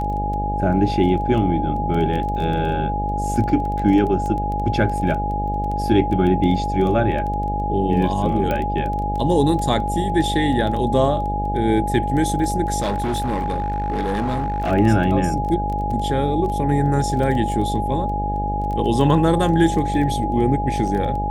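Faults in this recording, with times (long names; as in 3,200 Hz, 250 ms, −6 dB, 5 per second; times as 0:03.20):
mains buzz 50 Hz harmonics 17 −25 dBFS
surface crackle 11 per second −26 dBFS
whistle 830 Hz −23 dBFS
0:08.51: click −11 dBFS
0:12.79–0:14.72: clipping −18 dBFS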